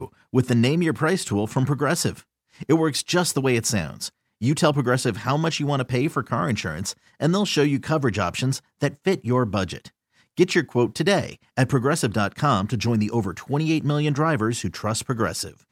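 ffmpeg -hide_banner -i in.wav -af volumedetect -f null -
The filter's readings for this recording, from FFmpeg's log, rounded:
mean_volume: -22.9 dB
max_volume: -5.0 dB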